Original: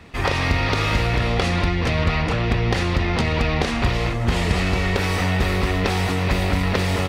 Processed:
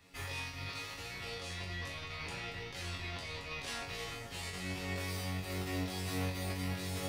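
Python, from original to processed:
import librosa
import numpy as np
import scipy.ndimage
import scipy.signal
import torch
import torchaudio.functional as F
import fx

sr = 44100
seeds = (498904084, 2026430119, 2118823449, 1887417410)

y = F.preemphasis(torch.from_numpy(x), 0.8).numpy()
y = fx.over_compress(y, sr, threshold_db=-34.0, ratio=-0.5)
y = fx.resonator_bank(y, sr, root=42, chord='fifth', decay_s=0.41)
y = y * librosa.db_to_amplitude(6.0)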